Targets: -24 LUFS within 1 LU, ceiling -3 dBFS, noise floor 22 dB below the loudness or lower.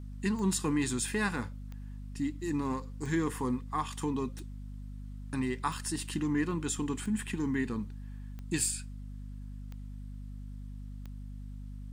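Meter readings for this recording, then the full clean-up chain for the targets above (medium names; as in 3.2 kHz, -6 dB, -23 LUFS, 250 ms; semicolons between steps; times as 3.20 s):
clicks found 9; hum 50 Hz; highest harmonic 250 Hz; hum level -40 dBFS; loudness -33.0 LUFS; peak level -17.0 dBFS; loudness target -24.0 LUFS
-> de-click; de-hum 50 Hz, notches 5; trim +9 dB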